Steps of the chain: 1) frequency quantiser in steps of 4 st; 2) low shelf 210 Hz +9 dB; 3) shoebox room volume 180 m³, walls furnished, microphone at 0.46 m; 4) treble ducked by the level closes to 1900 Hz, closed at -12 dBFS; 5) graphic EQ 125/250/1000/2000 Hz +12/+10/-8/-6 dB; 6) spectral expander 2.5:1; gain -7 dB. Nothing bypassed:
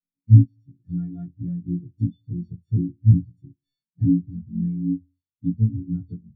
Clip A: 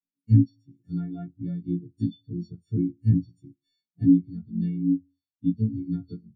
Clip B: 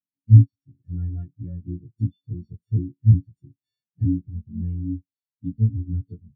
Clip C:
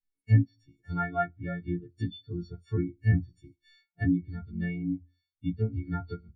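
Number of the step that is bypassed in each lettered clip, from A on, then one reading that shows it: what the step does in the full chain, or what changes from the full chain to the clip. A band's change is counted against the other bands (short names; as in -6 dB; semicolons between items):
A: 2, crest factor change -2.0 dB; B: 3, momentary loudness spread change +3 LU; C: 5, momentary loudness spread change -5 LU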